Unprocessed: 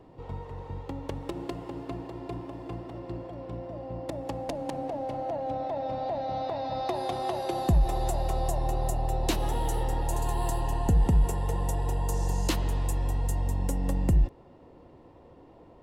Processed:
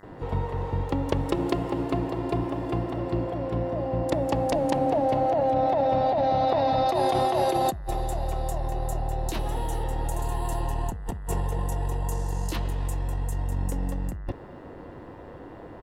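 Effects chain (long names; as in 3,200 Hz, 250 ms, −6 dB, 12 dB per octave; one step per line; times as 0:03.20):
multiband delay without the direct sound highs, lows 30 ms, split 5,500 Hz
compressor whose output falls as the input rises −32 dBFS, ratio −1
hum with harmonics 100 Hz, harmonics 20, −61 dBFS −1 dB per octave
level +6 dB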